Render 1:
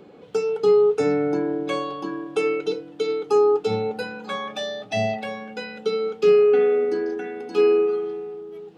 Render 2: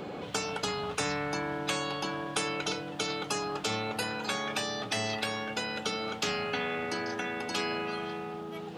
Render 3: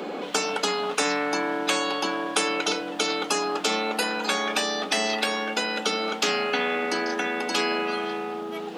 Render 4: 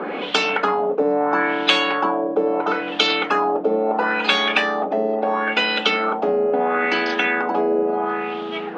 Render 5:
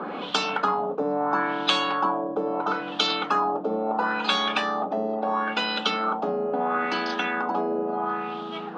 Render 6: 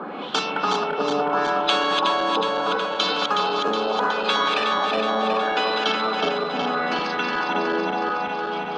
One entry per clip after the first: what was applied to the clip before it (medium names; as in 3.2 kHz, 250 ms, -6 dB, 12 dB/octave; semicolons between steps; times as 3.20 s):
spectrum-flattening compressor 4:1; trim -8 dB
steep high-pass 210 Hz 36 dB/octave; trim +7.5 dB
LFO low-pass sine 0.74 Hz 500–3400 Hz; trim +4.5 dB
FFT filter 110 Hz 0 dB, 430 Hz -12 dB, 1.2 kHz -4 dB, 2.1 kHz -16 dB, 3.8 kHz -6 dB; trim +3 dB
backward echo that repeats 184 ms, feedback 83%, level -4 dB